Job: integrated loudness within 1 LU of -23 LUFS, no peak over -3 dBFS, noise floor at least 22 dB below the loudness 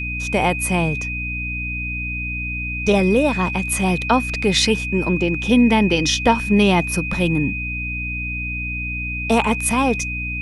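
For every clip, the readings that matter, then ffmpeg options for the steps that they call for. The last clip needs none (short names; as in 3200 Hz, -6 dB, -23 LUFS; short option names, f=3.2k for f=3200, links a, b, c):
hum 60 Hz; harmonics up to 300 Hz; hum level -26 dBFS; steady tone 2500 Hz; tone level -25 dBFS; loudness -19.5 LUFS; peak -3.0 dBFS; loudness target -23.0 LUFS
-> -af "bandreject=f=60:t=h:w=6,bandreject=f=120:t=h:w=6,bandreject=f=180:t=h:w=6,bandreject=f=240:t=h:w=6,bandreject=f=300:t=h:w=6"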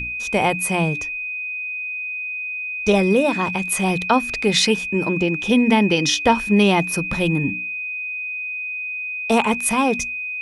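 hum none; steady tone 2500 Hz; tone level -25 dBFS
-> -af "bandreject=f=2.5k:w=30"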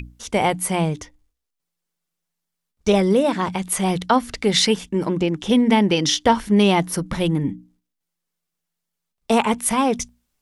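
steady tone none; loudness -20.0 LUFS; peak -3.5 dBFS; loudness target -23.0 LUFS
-> -af "volume=-3dB"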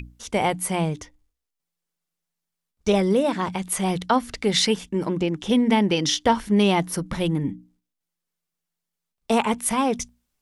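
loudness -23.0 LUFS; peak -6.5 dBFS; noise floor -84 dBFS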